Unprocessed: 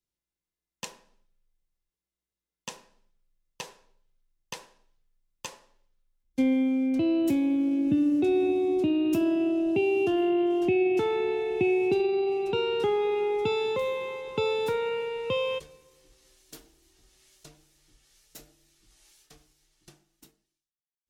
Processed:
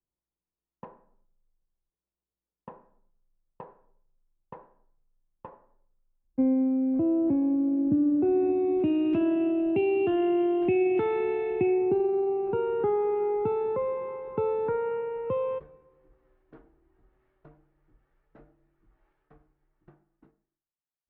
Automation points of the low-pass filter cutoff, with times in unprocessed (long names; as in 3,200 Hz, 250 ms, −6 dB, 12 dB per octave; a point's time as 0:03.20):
low-pass filter 24 dB per octave
0:08.01 1,200 Hz
0:08.94 2,500 Hz
0:11.50 2,500 Hz
0:11.91 1,500 Hz